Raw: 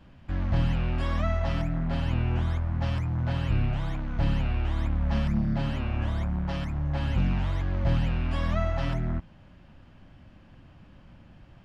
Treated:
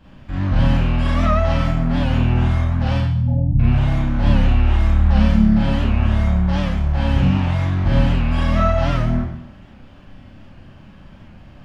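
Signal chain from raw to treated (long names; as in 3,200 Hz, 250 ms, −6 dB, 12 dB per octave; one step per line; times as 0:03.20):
0:02.97–0:03.60: gate on every frequency bin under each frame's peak −15 dB strong
four-comb reverb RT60 0.69 s, combs from 29 ms, DRR −6 dB
wow of a warped record 78 rpm, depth 100 cents
level +3 dB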